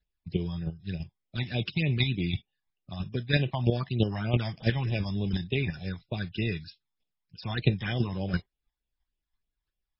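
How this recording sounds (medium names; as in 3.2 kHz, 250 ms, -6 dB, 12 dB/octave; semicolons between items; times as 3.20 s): chopped level 3 Hz, depth 60%, duty 10%; phasing stages 12, 3.3 Hz, lowest notch 430–1600 Hz; MP3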